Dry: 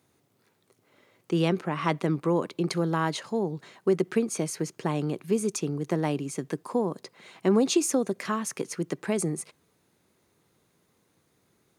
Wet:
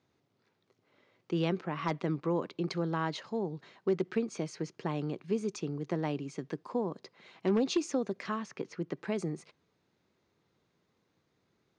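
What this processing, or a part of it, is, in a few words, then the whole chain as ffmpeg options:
synthesiser wavefolder: -filter_complex "[0:a]asettb=1/sr,asplit=3[s0][s1][s2];[s0]atrim=end=8.464[s3];[s1]atrim=start=8.46:end=8.97,asetpts=PTS-STARTPTS,afade=t=in:d=0.004:c=qsin,afade=t=out:st=0.506:d=0.004:c=qsin,aemphasis=mode=reproduction:type=50fm[s4];[s2]atrim=start=8.966[s5];[s3][s4]acrossfade=d=0.004:c1=hsin:c2=qsin[s6];[s6][s5]acrossfade=d=0.004:c1=qsin:c2=hsin,aeval=exprs='0.2*(abs(mod(val(0)/0.2+3,4)-2)-1)':c=same,lowpass=f=5700:w=0.5412,lowpass=f=5700:w=1.3066,volume=0.501"

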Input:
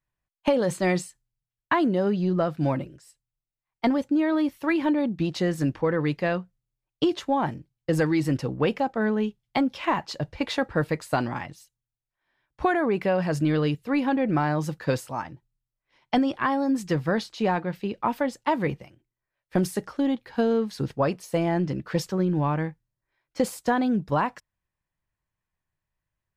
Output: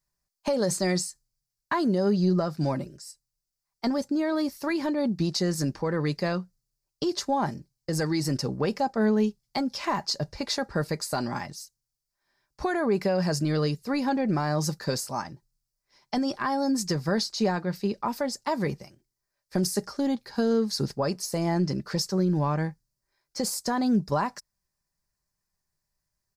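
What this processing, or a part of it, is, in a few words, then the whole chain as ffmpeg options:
over-bright horn tweeter: -af "highshelf=f=3900:t=q:w=3:g=7.5,alimiter=limit=0.133:level=0:latency=1:release=192,aecho=1:1:5:0.32"

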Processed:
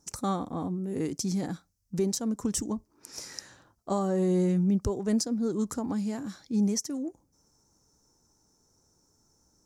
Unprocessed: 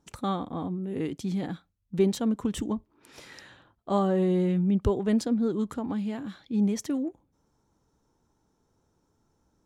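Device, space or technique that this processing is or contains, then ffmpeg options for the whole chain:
over-bright horn tweeter: -af "highshelf=f=4300:t=q:w=3:g=9,alimiter=limit=0.119:level=0:latency=1:release=434"

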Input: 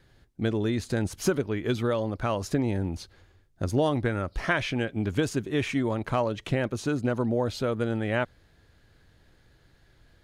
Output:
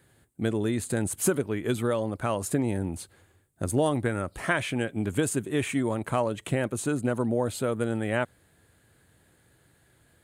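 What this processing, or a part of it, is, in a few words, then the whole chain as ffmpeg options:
budget condenser microphone: -af "highpass=91,highshelf=f=6800:t=q:w=3:g=8"

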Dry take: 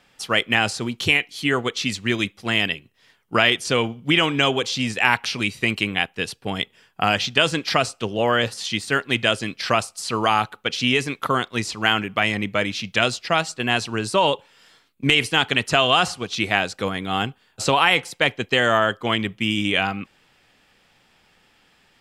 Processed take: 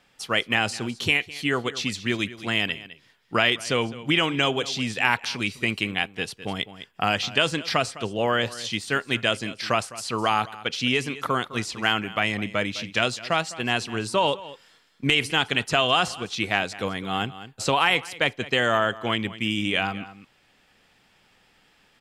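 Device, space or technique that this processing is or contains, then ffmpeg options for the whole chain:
ducked delay: -filter_complex "[0:a]asplit=3[s0][s1][s2];[s1]adelay=207,volume=0.708[s3];[s2]apad=whole_len=979749[s4];[s3][s4]sidechaincompress=threshold=0.0316:ratio=16:attack=31:release=867[s5];[s0][s5]amix=inputs=2:normalize=0,volume=0.668"

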